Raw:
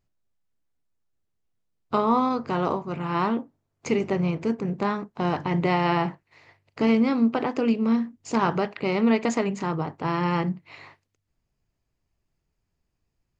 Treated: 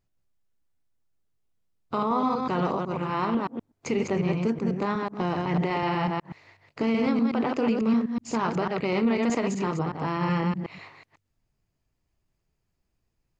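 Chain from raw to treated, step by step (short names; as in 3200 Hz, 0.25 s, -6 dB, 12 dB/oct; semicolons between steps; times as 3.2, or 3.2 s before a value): reverse delay 0.124 s, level -4 dB; limiter -15 dBFS, peak gain reduction 7.5 dB; gain -1 dB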